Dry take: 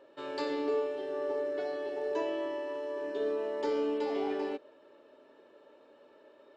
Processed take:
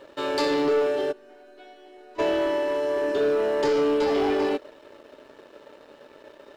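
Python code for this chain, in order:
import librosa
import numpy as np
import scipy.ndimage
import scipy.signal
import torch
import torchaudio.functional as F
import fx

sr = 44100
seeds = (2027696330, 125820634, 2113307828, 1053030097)

y = fx.high_shelf(x, sr, hz=4000.0, db=6.0)
y = fx.leveller(y, sr, passes=2)
y = fx.resonator_bank(y, sr, root=59, chord='major', decay_s=0.4, at=(1.11, 2.18), fade=0.02)
y = F.gain(torch.from_numpy(y), 5.0).numpy()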